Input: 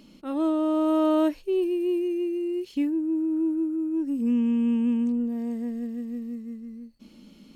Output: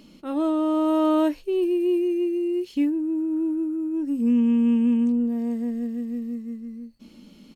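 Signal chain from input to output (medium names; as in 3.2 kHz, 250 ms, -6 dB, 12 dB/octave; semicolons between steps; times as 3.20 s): doubling 17 ms -13 dB; trim +2 dB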